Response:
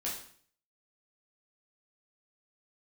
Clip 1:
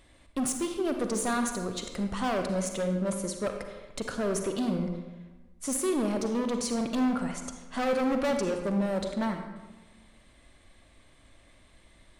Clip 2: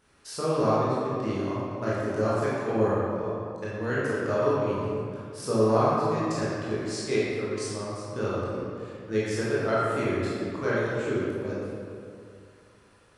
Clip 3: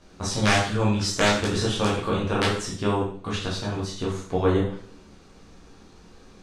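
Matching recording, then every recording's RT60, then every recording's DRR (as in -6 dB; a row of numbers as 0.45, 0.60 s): 3; 1.2, 2.4, 0.55 s; 5.0, -9.0, -6.0 dB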